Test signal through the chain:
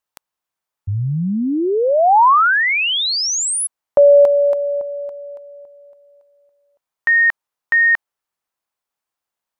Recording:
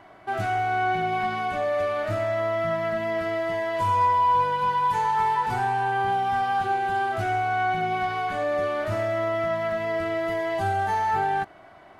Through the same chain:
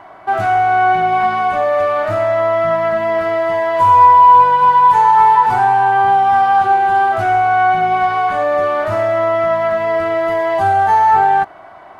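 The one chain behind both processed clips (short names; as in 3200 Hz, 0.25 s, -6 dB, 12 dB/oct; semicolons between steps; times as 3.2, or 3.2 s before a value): bell 950 Hz +10 dB 1.6 oct; gain +4 dB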